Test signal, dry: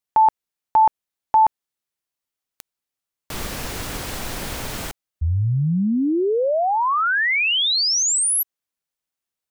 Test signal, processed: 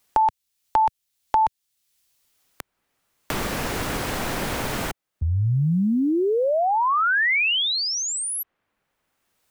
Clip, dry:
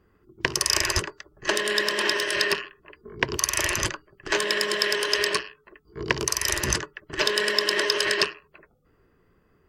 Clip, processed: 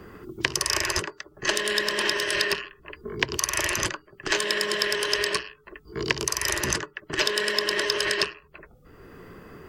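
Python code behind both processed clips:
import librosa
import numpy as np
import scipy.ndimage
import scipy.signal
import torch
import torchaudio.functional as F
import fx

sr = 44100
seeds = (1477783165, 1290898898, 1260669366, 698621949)

y = fx.band_squash(x, sr, depth_pct=70)
y = y * 10.0 ** (-1.5 / 20.0)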